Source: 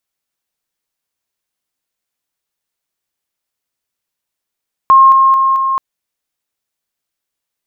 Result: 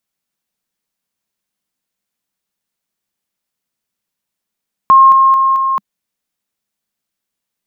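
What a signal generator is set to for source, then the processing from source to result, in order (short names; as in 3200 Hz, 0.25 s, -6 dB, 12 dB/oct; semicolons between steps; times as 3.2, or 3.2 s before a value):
level ladder 1070 Hz -2.5 dBFS, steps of -3 dB, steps 4, 0.22 s 0.00 s
bell 200 Hz +9.5 dB 0.63 oct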